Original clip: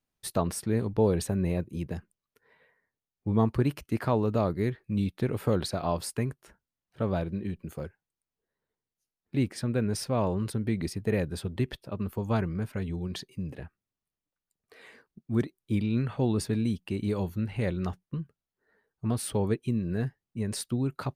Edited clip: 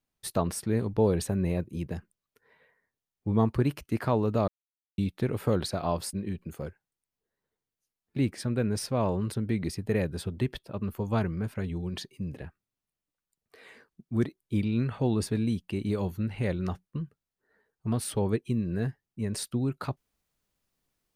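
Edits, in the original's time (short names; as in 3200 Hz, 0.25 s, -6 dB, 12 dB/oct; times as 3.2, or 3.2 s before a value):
4.48–4.98 mute
6.13–7.31 cut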